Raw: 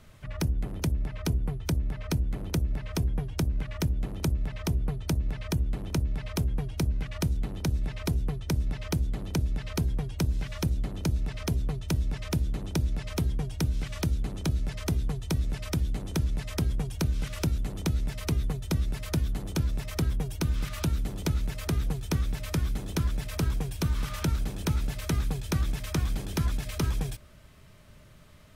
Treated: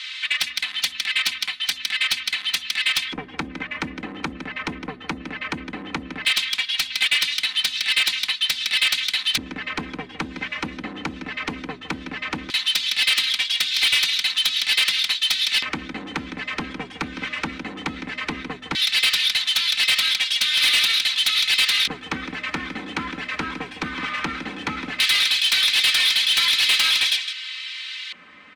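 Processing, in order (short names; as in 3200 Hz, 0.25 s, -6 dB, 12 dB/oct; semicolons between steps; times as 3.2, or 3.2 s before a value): HPF 110 Hz 12 dB/oct; bell 2700 Hz +14 dB 2.4 oct; comb 3.9 ms, depth 80%; on a send: echo 0.16 s -12.5 dB; on the sum: LFO band-pass square 0.16 Hz 390–3900 Hz; in parallel at -8 dB: sine folder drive 17 dB, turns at -12 dBFS; on the sum: graphic EQ 500/1000/2000/4000/8000 Hz -10/+6/+11/+6/+7 dB; soft clip -11 dBFS, distortion -14 dB; gain -2 dB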